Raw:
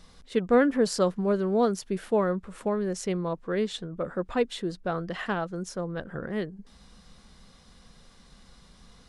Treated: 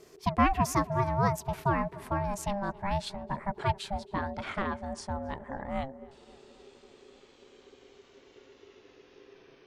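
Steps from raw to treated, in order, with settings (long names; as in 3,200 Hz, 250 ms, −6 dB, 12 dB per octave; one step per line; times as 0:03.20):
gliding playback speed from 135% → 53%
tape delay 269 ms, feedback 68%, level −21 dB, low-pass 2,500 Hz
ring modulation 400 Hz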